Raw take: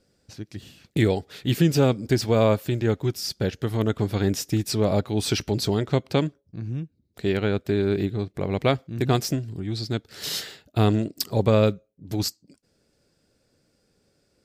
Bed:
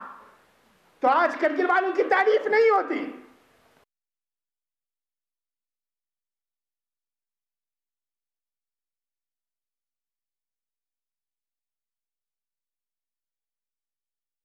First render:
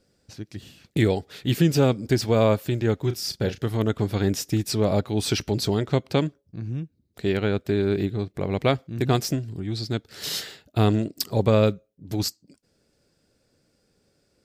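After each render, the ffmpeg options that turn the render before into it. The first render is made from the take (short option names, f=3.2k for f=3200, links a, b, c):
-filter_complex "[0:a]asettb=1/sr,asplit=3[a][b][c];[a]atrim=end=2.994[d];[b]atrim=start=2.99:end=3.68,asetpts=PTS-STARTPTS,afade=t=in:d=0.004:c=qsin,afade=t=out:st=0.686:d=0.004:c=qsin,asplit=2[e][f];[f]adelay=34,volume=-10dB[g];[e][g]amix=inputs=2:normalize=0,atrim=end_sample=30429[h];[c]atrim=start=3.676[i];[d][h]acrossfade=d=0.004:c1=hsin:c2=qsin[j];[j][i]acrossfade=d=0.004:c1=qsin:c2=hsin"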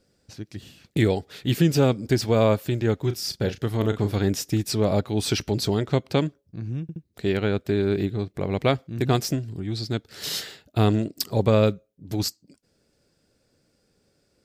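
-filter_complex "[0:a]asettb=1/sr,asplit=3[a][b][c];[a]atrim=end=3.774[d];[b]atrim=start=3.77:end=4.19,asetpts=PTS-STARTPTS,afade=t=in:d=0.004:c=qsin,afade=t=out:st=0.416:d=0.004:c=qsin,asplit=2[e][f];[f]adelay=39,volume=-9.5dB[g];[e][g]amix=inputs=2:normalize=0,atrim=end_sample=18522[h];[c]atrim=start=4.186[i];[d][h]acrossfade=d=0.004:c1=hsin:c2=qsin[j];[j][i]acrossfade=d=0.004:c1=qsin:c2=hsin,asplit=4[k][l][m][n];[k]atrim=end=6.892[o];[l]atrim=start=6.818:end=6.892[p];[m]atrim=start=6.818:end=6.892[q];[n]atrim=start=7.028[r];[o][p]acrossfade=d=0.004:c1=hsin:c2=hsin[s];[s][q]acrossfade=d=0.004:c1=hsin:c2=hsin[t];[t][r]acrossfade=d=0.004:c1=hsin:c2=hsin"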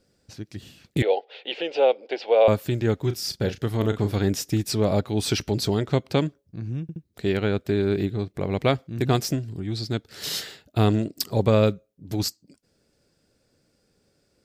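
-filter_complex "[0:a]asettb=1/sr,asplit=3[a][b][c];[a]atrim=end=1.024[d];[b]atrim=start=1.02:end=2.48,asetpts=PTS-STARTPTS,afade=t=in:d=0.004:c=qsin,afade=t=out:st=1.456:d=0.004:c=qsin,highpass=f=470:w=0.5412,highpass=f=470:w=1.3066,equalizer=f=510:t=q:w=4:g=9,equalizer=f=780:t=q:w=4:g=7,equalizer=f=1.2k:t=q:w=4:g=-9,equalizer=f=1.7k:t=q:w=4:g=-5,equalizer=f=2.8k:t=q:w=4:g=6,lowpass=f=3.6k:w=0.5412,lowpass=f=3.6k:w=1.3066[e];[c]atrim=start=2.476[f];[d][e]acrossfade=d=0.004:c1=hsin:c2=qsin[g];[g][f]acrossfade=d=0.004:c1=qsin:c2=hsin"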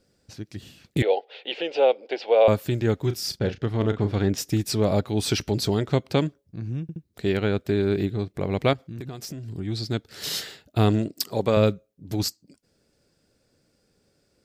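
-filter_complex "[0:a]asettb=1/sr,asplit=3[a][b][c];[a]atrim=end=3.394[d];[b]atrim=start=3.39:end=4.38,asetpts=PTS-STARTPTS,afade=t=in:d=0.004:c=qsin,afade=t=out:st=0.986:d=0.004:c=qsin,adynamicsmooth=sensitivity=2:basefreq=4.2k[e];[c]atrim=start=4.376[f];[d][e]acrossfade=d=0.004:c1=hsin:c2=qsin[g];[g][f]acrossfade=d=0.004:c1=qsin:c2=hsin,asettb=1/sr,asplit=3[h][i][j];[h]atrim=end=8.734[k];[i]atrim=start=8.73:end=9.5,asetpts=PTS-STARTPTS,afade=t=in:d=0.004:c=qsin,afade=t=out:st=0.766:d=0.004:c=qsin,acompressor=threshold=-31dB:ratio=12:attack=3.2:release=140:knee=1:detection=peak[l];[j]atrim=start=9.496[m];[k][l]acrossfade=d=0.004:c1=hsin:c2=qsin[n];[n][m]acrossfade=d=0.004:c1=qsin:c2=hsin,asettb=1/sr,asplit=3[o][p][q];[o]atrim=end=11.154[r];[p]atrim=start=11.15:end=11.57,asetpts=PTS-STARTPTS,afade=t=in:d=0.004:c=qsin,afade=t=out:st=0.416:d=0.004:c=qsin,highpass=f=270:p=1[s];[q]atrim=start=11.566[t];[r][s]acrossfade=d=0.004:c1=hsin:c2=qsin[u];[u][t]acrossfade=d=0.004:c1=qsin:c2=hsin"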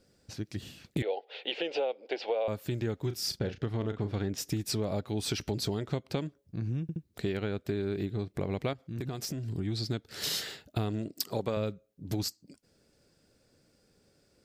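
-af "acompressor=threshold=-29dB:ratio=6"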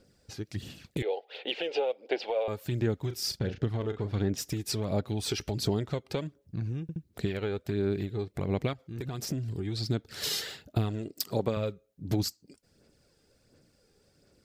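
-af "aphaser=in_gain=1:out_gain=1:delay=2.5:decay=0.41:speed=1.4:type=sinusoidal"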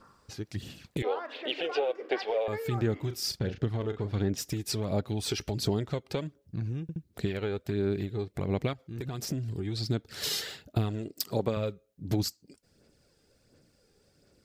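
-filter_complex "[1:a]volume=-19dB[a];[0:a][a]amix=inputs=2:normalize=0"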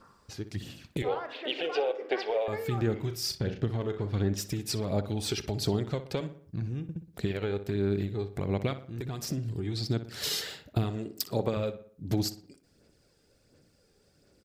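-filter_complex "[0:a]asplit=2[a][b];[b]adelay=60,lowpass=f=3k:p=1,volume=-12dB,asplit=2[c][d];[d]adelay=60,lowpass=f=3k:p=1,volume=0.48,asplit=2[e][f];[f]adelay=60,lowpass=f=3k:p=1,volume=0.48,asplit=2[g][h];[h]adelay=60,lowpass=f=3k:p=1,volume=0.48,asplit=2[i][j];[j]adelay=60,lowpass=f=3k:p=1,volume=0.48[k];[a][c][e][g][i][k]amix=inputs=6:normalize=0"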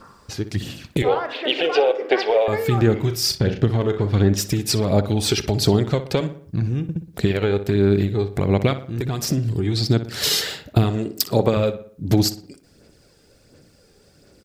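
-af "volume=11.5dB"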